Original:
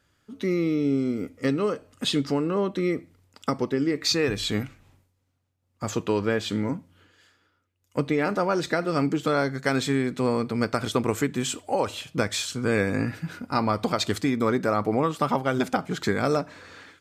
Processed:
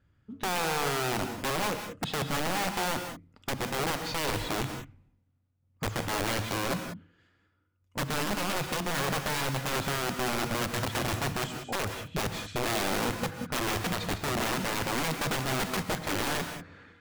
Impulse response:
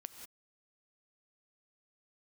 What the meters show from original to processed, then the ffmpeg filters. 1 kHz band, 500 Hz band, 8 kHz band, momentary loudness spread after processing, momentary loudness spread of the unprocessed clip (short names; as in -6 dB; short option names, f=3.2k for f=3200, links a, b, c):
-2.0 dB, -8.0 dB, +1.0 dB, 6 LU, 7 LU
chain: -filter_complex "[0:a]acontrast=57,bass=f=250:g=12,treble=f=4k:g=-13,aeval=exprs='(mod(3.55*val(0)+1,2)-1)/3.55':c=same[a];[1:a]atrim=start_sample=2205[b];[a][b]afir=irnorm=-1:irlink=0,volume=-8dB"